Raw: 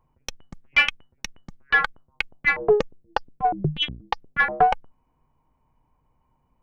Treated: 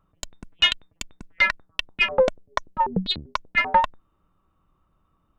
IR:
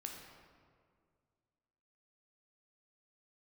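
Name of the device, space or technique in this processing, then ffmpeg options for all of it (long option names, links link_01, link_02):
nightcore: -af "asetrate=54243,aresample=44100"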